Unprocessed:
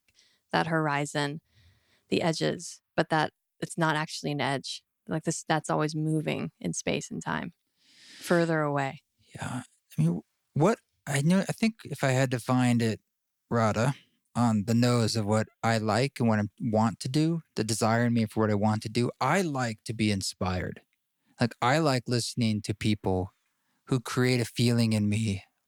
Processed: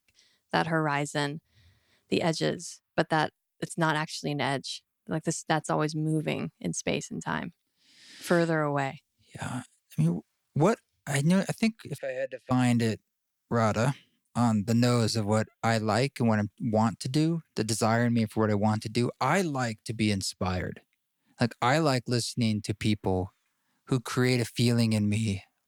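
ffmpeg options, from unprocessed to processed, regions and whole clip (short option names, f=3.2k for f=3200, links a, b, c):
-filter_complex "[0:a]asettb=1/sr,asplit=3[a][b][c];[a]atrim=end=11.984[d];[b]atrim=start=11.98:end=12.51,asetpts=PTS-STARTPTS,afade=t=in:d=0.004:c=qsin,afade=t=out:st=0.526:d=0.004:c=qsin,asplit=3[e][f][g];[e]bandpass=f=530:t=q:w=8,volume=0dB[h];[f]bandpass=f=1.84k:t=q:w=8,volume=-6dB[i];[g]bandpass=f=2.48k:t=q:w=8,volume=-9dB[j];[h][i][j]amix=inputs=3:normalize=0,highshelf=f=4k:g=6.5[k];[c]atrim=start=12.506[l];[d][k]acrossfade=d=0.004:c1=hsin:c2=qsin[m];[m][l]acrossfade=d=0.004:c1=qsin:c2=hsin"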